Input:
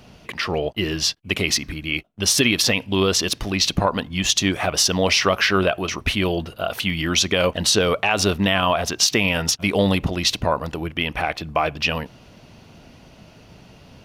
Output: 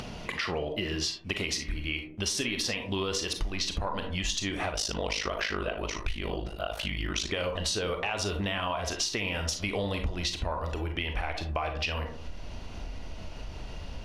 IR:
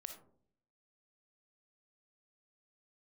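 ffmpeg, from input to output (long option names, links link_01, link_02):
-filter_complex "[1:a]atrim=start_sample=2205,asetrate=66150,aresample=44100[link_01];[0:a][link_01]afir=irnorm=-1:irlink=0,asettb=1/sr,asplit=3[link_02][link_03][link_04];[link_02]atrim=end=4.734[link_05];[link_03]atrim=start=4.73:end=7.29,asetpts=PTS-STARTPTS,afade=type=in:duration=0.004:curve=qsin,afade=type=out:start_time=2.556:duration=0.004:curve=qsin,aeval=exprs='val(0)*sin(2*PI*26*n/s)':channel_layout=same[link_06];[link_04]atrim=start=7.286[link_07];[link_05][link_06]acrossfade=duration=0.004:curve1=hsin:curve2=qsin[link_08];[link_08][link_07]acrossfade=duration=0.004:curve1=qsin:curve2=hsin,asubboost=boost=9:cutoff=50,acompressor=threshold=-30dB:ratio=4,lowpass=9600,acompressor=mode=upward:threshold=-30dB:ratio=2.5,volume=2dB"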